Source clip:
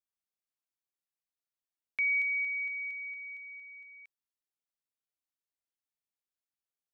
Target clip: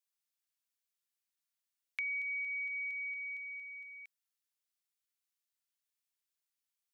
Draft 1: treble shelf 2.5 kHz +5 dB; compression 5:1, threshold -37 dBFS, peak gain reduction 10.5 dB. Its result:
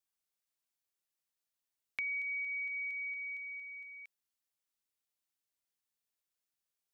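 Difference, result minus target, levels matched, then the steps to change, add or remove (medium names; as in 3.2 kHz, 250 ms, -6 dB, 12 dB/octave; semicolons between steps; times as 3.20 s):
1 kHz band +3.5 dB
add first: high-pass 1.2 kHz 12 dB/octave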